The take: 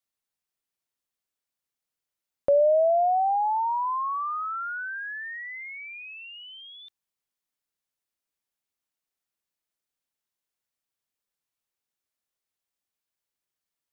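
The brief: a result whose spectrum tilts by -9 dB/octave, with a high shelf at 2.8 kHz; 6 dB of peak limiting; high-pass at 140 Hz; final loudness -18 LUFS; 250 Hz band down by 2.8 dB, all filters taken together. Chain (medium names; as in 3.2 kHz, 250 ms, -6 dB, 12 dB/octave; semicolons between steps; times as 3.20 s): high-pass 140 Hz; peaking EQ 250 Hz -3.5 dB; treble shelf 2.8 kHz +4 dB; trim +10 dB; peak limiter -11 dBFS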